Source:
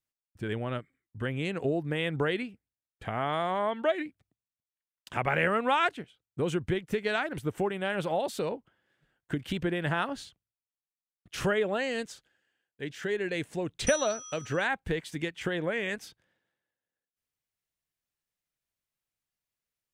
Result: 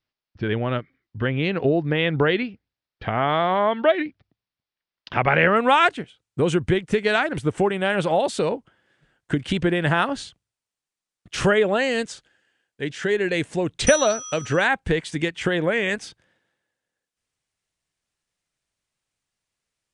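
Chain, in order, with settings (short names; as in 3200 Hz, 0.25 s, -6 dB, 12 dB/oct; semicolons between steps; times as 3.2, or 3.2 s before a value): steep low-pass 5300 Hz 48 dB/oct, from 5.55 s 10000 Hz; gain +9 dB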